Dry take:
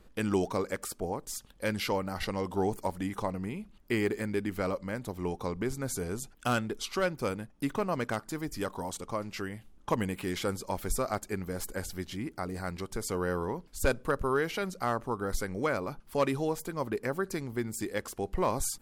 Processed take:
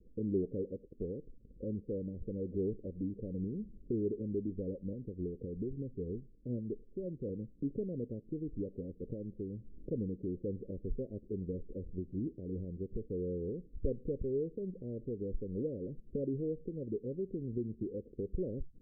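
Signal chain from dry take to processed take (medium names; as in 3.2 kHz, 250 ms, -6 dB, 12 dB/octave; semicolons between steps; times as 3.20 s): recorder AGC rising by 35 dB/s; steep low-pass 510 Hz 72 dB/octave; 4.93–7.29 s: rotary cabinet horn 6 Hz; trim -4.5 dB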